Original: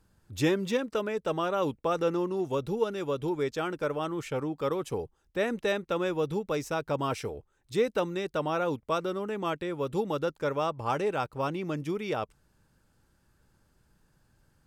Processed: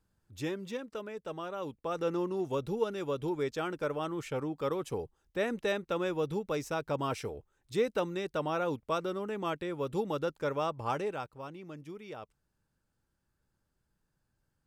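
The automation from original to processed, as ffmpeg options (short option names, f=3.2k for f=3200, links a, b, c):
-af "volume=-3dB,afade=t=in:st=1.74:d=0.45:silence=0.446684,afade=t=out:st=10.87:d=0.51:silence=0.316228"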